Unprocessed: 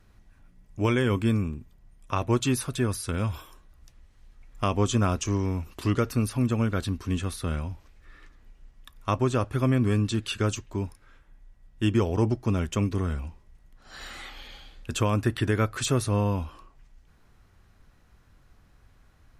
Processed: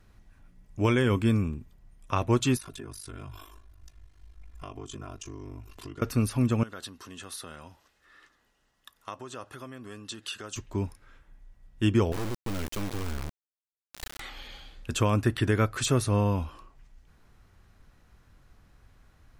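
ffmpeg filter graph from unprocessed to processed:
-filter_complex "[0:a]asettb=1/sr,asplit=3[a][b][c];[a]atrim=end=2.574[d];[b]atrim=start=2.57:end=6.02,asetpts=PTS-STARTPTS,afade=t=in:d=0.004:c=qsin,afade=t=out:st=3.446:d=0.004:c=qsin,aecho=1:1:2.9:0.79,atrim=end_sample=152145,acompressor=threshold=-38dB:ratio=4:attack=3.2:release=140:knee=1:detection=peak,aeval=exprs='val(0)*sin(2*PI*25*n/s)':c=same[e];[c]atrim=start=6.016[f];[d][e]acrossfade=d=0.004:c1=hsin:c2=qsin[g];[g][f]acrossfade=d=0.004:c1=qsin:c2=hsin,asettb=1/sr,asplit=3[h][i][j];[h]atrim=end=6.634[k];[i]atrim=start=6.63:end=10.56,asetpts=PTS-STARTPTS,afade=t=in:d=0.004:c=qsin,afade=t=out:st=3.926:d=0.004:c=qsin,bandreject=f=2.3k:w=6.7,acompressor=threshold=-31dB:ratio=4:attack=3.2:release=140:knee=1:detection=peak,highpass=f=720:p=1[l];[j]atrim=start=10.556[m];[k][l]acrossfade=d=0.004:c1=hsin:c2=qsin[n];[n][m]acrossfade=d=0.004:c1=qsin:c2=hsin,asettb=1/sr,asplit=3[o][p][q];[o]atrim=end=12.124[r];[p]atrim=start=12.12:end=14.2,asetpts=PTS-STARTPTS,afade=t=in:d=0.004:c=qsin,afade=t=out:st=2.076:d=0.004:c=qsin,asubboost=boost=2:cutoff=110,acrusher=bits=3:dc=4:mix=0:aa=0.000001,asoftclip=type=hard:threshold=-25dB[s];[q]atrim=start=14.196[t];[r][s]acrossfade=d=0.004:c1=hsin:c2=qsin[u];[u][t]acrossfade=d=0.004:c1=qsin:c2=hsin"

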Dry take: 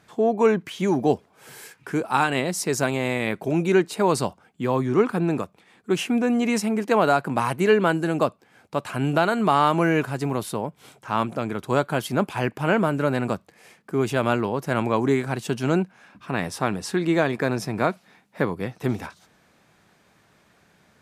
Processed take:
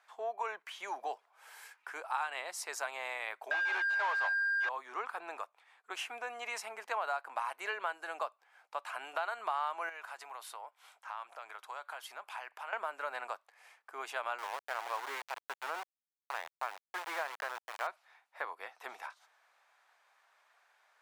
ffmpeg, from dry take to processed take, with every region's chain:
-filter_complex "[0:a]asettb=1/sr,asplit=3[a][b][c];[a]atrim=end=3.514[d];[b]atrim=start=3.51:end=4.69,asetpts=PTS-STARTPTS,afade=t=in:d=0.004:c=qsin,afade=t=out:st=1.176:d=0.004:c=qsin,highpass=350,lowpass=3.1k,aeval=exprs='val(0)+0.0501*sin(2*PI*1600*n/s)':c=same,asplit=2[e][f];[f]highpass=f=720:p=1,volume=25dB,asoftclip=type=tanh:threshold=-8dB[g];[e][g]amix=inputs=2:normalize=0,lowpass=f=2k:p=1,volume=-6dB[h];[c]atrim=start=4.686[i];[d][h]acrossfade=d=0.004:c1=hsin:c2=qsin[j];[j][i]acrossfade=d=0.004:c1=qsin:c2=hsin,asettb=1/sr,asplit=3[k][l][m];[k]atrim=end=9.894[n];[l]atrim=start=9.89:end=12.73,asetpts=PTS-STARTPTS,afade=t=in:d=0.004:c=qsin,afade=t=out:st=2.836:d=0.004:c=qsin,highpass=f=600:p=1,acompressor=threshold=-31dB:ratio=4:attack=3.2:release=140:knee=1:detection=peak[o];[m]atrim=start=12.726[p];[n][o]acrossfade=d=0.004:c1=hsin:c2=qsin[q];[q][p]acrossfade=d=0.004:c1=qsin:c2=hsin,asettb=1/sr,asplit=3[r][s][t];[r]atrim=end=14.384[u];[s]atrim=start=14.38:end=17.87,asetpts=PTS-STARTPTS,afade=t=in:d=0.004:c=qsin,afade=t=out:st=3.486:d=0.004:c=qsin,highpass=150,lowpass=2.3k,aeval=exprs='val(0)*gte(abs(val(0)),0.0668)':c=same[v];[t]atrim=start=17.866[w];[u][v]acrossfade=d=0.004:c1=hsin:c2=qsin[x];[x][w]acrossfade=d=0.004:c1=qsin:c2=hsin,highpass=f=780:w=0.5412,highpass=f=780:w=1.3066,highshelf=f=2.4k:g=-10,acompressor=threshold=-31dB:ratio=2.5,volume=-3.5dB"

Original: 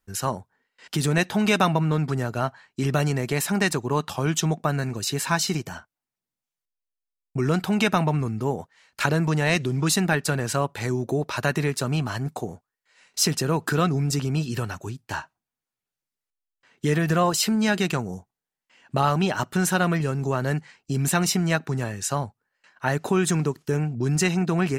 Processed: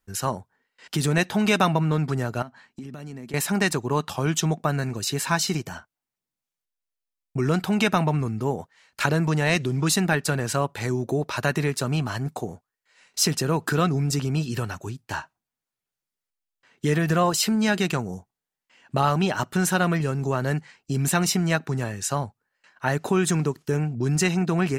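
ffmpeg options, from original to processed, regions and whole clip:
-filter_complex "[0:a]asettb=1/sr,asplit=3[a][b][c];[a]atrim=end=2.424[d];[b]atrim=start=2.42:end=3.34,asetpts=PTS-STARTPTS,afade=t=in:d=0.004:c=qsin,afade=t=out:st=0.916:d=0.004:c=qsin,equalizer=f=240:w=2.2:g=11.5,acompressor=threshold=-38dB:ratio=4:attack=3.2:release=140:knee=1:detection=peak[e];[c]atrim=start=3.336[f];[d][e]acrossfade=d=0.004:c1=hsin:c2=qsin[g];[g][f]acrossfade=d=0.004:c1=qsin:c2=hsin"

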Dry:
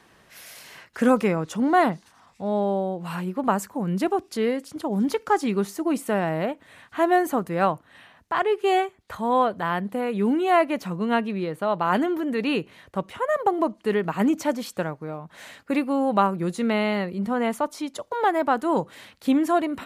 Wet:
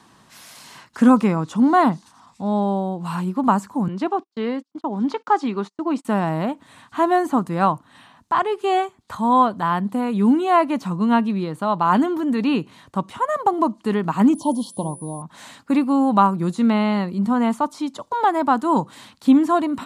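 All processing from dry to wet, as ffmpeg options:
-filter_complex "[0:a]asettb=1/sr,asplit=3[a][b][c];[a]atrim=end=3.884[d];[b]atrim=start=3.88:end=6.05,asetpts=PTS-STARTPTS,afade=t=in:d=0.004:c=qsin,afade=t=out:st=2.166:d=0.004:c=qsin,highpass=310,lowpass=3.9k,agate=range=-39dB:threshold=-39dB:ratio=16:release=100:detection=peak[e];[c]atrim=start=6.046[f];[d][e]acrossfade=d=0.004:c1=hsin:c2=qsin[g];[g][f]acrossfade=d=0.004:c1=qsin:c2=hsin,asettb=1/sr,asplit=3[h][i][j];[h]atrim=end=14.354[k];[i]atrim=start=14.35:end=15.22,asetpts=PTS-STARTPTS,afade=t=in:d=0.004:c=qsin,afade=t=out:st=0.866:d=0.004:c=qsin,aeval=exprs='val(0)+0.0158*sin(2*PI*9800*n/s)':c=same,asuperstop=centerf=1800:order=20:qfactor=0.93,bandreject=f=178.6:t=h:w=4,bandreject=f=357.2:t=h:w=4,bandreject=f=535.8:t=h:w=4[l];[j]atrim=start=15.216[m];[k][l]acrossfade=d=0.004:c1=hsin:c2=qsin[n];[n][m]acrossfade=d=0.004:c1=qsin:c2=hsin,acrossover=split=3700[o][p];[p]acompressor=threshold=-46dB:ratio=4:attack=1:release=60[q];[o][q]amix=inputs=2:normalize=0,equalizer=f=125:t=o:w=1:g=7,equalizer=f=250:t=o:w=1:g=10,equalizer=f=500:t=o:w=1:g=-4,equalizer=f=1k:t=o:w=1:g=11,equalizer=f=2k:t=o:w=1:g=-3,equalizer=f=4k:t=o:w=1:g=6,equalizer=f=8k:t=o:w=1:g=9,volume=-3dB"

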